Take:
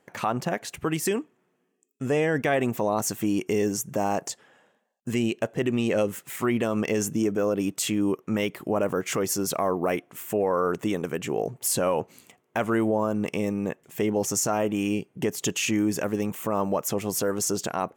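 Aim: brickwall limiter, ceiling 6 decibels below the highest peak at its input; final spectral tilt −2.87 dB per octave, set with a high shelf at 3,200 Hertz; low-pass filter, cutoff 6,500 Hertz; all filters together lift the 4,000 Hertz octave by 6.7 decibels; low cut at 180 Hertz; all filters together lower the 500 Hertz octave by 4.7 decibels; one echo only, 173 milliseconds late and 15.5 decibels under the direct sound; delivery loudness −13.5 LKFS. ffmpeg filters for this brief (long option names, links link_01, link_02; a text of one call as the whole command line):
ffmpeg -i in.wav -af "highpass=180,lowpass=6500,equalizer=frequency=500:width_type=o:gain=-6,highshelf=frequency=3200:gain=8.5,equalizer=frequency=4000:width_type=o:gain=3.5,alimiter=limit=-16.5dB:level=0:latency=1,aecho=1:1:173:0.168,volume=15dB" out.wav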